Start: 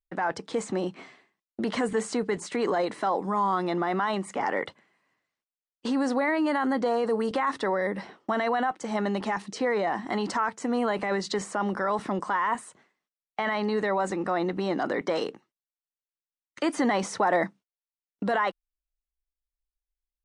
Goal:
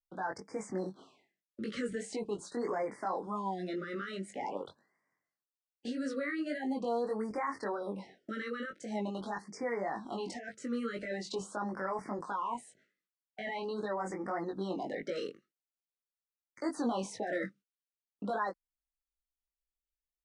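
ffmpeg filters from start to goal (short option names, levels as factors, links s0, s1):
-af "flanger=delay=18.5:depth=3.1:speed=1.8,afftfilt=real='re*(1-between(b*sr/1024,800*pow(3400/800,0.5+0.5*sin(2*PI*0.44*pts/sr))/1.41,800*pow(3400/800,0.5+0.5*sin(2*PI*0.44*pts/sr))*1.41))':imag='im*(1-between(b*sr/1024,800*pow(3400/800,0.5+0.5*sin(2*PI*0.44*pts/sr))/1.41,800*pow(3400/800,0.5+0.5*sin(2*PI*0.44*pts/sr))*1.41))':win_size=1024:overlap=0.75,volume=0.501"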